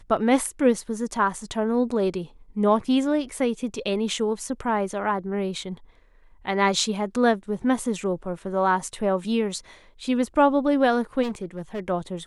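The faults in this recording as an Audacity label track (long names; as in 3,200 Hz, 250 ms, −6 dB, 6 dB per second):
11.220000	11.800000	clipping −25 dBFS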